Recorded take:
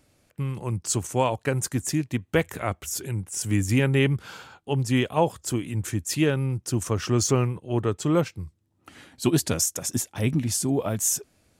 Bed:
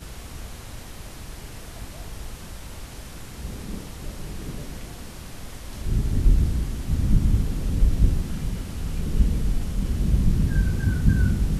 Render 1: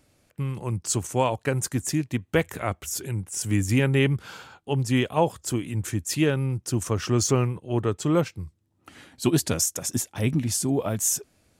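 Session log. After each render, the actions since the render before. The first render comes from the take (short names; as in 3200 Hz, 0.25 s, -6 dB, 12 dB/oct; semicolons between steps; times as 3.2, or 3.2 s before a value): nothing audible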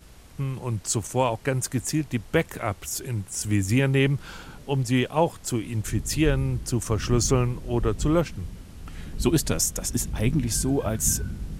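add bed -11 dB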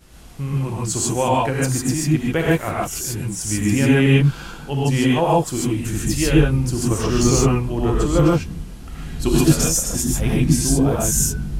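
non-linear reverb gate 0.17 s rising, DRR -4.5 dB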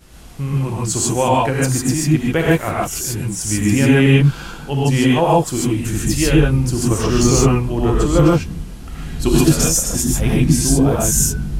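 gain +3 dB; limiter -2 dBFS, peak gain reduction 3 dB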